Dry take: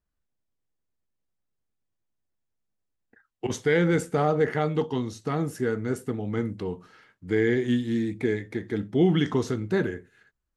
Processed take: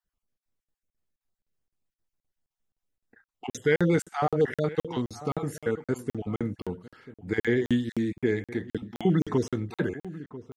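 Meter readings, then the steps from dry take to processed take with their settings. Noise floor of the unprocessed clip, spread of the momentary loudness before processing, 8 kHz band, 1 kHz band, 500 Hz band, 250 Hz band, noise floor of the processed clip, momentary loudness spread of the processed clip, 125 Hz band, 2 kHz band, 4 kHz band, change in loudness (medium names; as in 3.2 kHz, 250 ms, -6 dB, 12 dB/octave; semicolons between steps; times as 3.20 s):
-81 dBFS, 9 LU, -2.0 dB, -2.0 dB, -2.0 dB, -2.0 dB, under -85 dBFS, 14 LU, -2.0 dB, -2.0 dB, -3.5 dB, -2.0 dB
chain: random holes in the spectrogram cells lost 22%; echo from a far wall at 170 m, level -16 dB; crackling interface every 0.26 s, samples 2048, zero, from 0.38 s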